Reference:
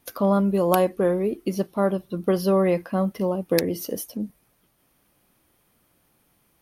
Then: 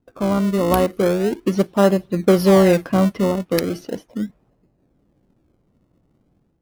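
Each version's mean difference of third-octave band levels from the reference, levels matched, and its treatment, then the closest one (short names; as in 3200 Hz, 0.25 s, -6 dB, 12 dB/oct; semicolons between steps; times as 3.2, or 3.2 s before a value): 6.5 dB: low-pass opened by the level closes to 470 Hz, open at -19.5 dBFS; AGC gain up to 7.5 dB; in parallel at -8 dB: decimation with a swept rate 37×, swing 100% 0.38 Hz; on the sum: gain -1.5 dB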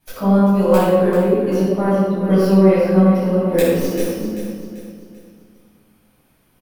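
8.5 dB: tracing distortion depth 0.27 ms; on a send: feedback echo 0.39 s, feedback 40%, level -10 dB; on the sum: shoebox room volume 880 m³, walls mixed, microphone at 8.2 m; gain -8.5 dB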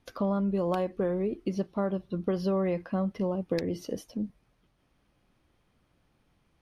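3.5 dB: LPF 5100 Hz 12 dB/oct; low shelf 110 Hz +10.5 dB; compressor 4:1, threshold -20 dBFS, peak gain reduction 6 dB; gain -5 dB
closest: third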